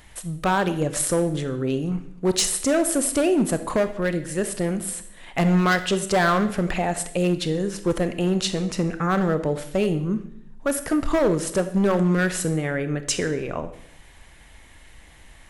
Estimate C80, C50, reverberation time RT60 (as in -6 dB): 15.0 dB, 12.5 dB, 0.80 s